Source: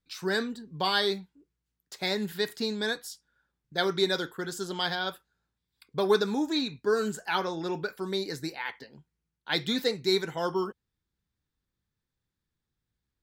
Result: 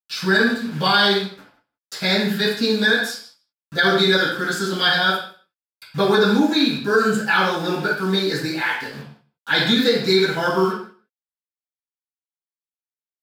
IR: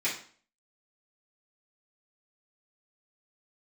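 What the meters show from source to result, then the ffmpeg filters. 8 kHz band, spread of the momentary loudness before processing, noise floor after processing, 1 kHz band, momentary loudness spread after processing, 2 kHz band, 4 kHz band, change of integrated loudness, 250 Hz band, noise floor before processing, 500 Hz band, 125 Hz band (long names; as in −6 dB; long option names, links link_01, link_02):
+8.0 dB, 11 LU, below −85 dBFS, +11.0 dB, 11 LU, +15.0 dB, +11.0 dB, +11.0 dB, +12.0 dB, below −85 dBFS, +8.5 dB, +13.0 dB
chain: -filter_complex "[0:a]asplit=2[link_01][link_02];[link_02]acompressor=threshold=-42dB:ratio=5,volume=-1dB[link_03];[link_01][link_03]amix=inputs=2:normalize=0,acrusher=bits=7:mix=0:aa=0.000001,aecho=1:1:158:0.075[link_04];[1:a]atrim=start_sample=2205,atrim=end_sample=6615,asetrate=30429,aresample=44100[link_05];[link_04][link_05]afir=irnorm=-1:irlink=0,alimiter=level_in=6dB:limit=-1dB:release=50:level=0:latency=1,volume=-5.5dB"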